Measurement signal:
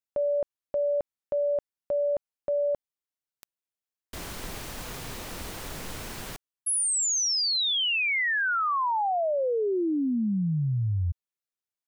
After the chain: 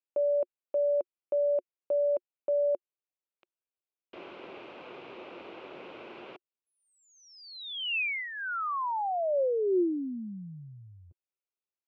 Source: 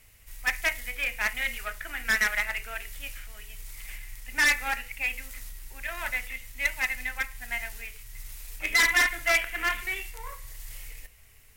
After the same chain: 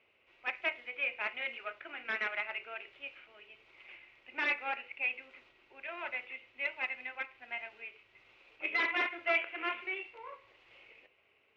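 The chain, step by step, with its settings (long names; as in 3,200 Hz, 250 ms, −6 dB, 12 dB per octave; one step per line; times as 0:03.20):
loudspeaker in its box 320–2,800 Hz, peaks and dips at 360 Hz +9 dB, 550 Hz +5 dB, 1,800 Hz −10 dB, 2,600 Hz +5 dB
level −5 dB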